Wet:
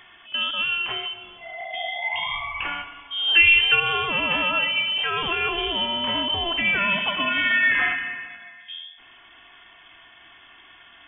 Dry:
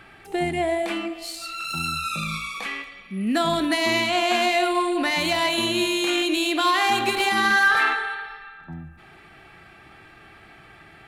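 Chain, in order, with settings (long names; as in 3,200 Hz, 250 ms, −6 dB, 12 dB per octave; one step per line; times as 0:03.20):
stylus tracing distortion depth 0.026 ms
0:02.02–0:03.80: parametric band 690 Hz +11.5 dB 1.6 octaves
voice inversion scrambler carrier 3,400 Hz
level −1.5 dB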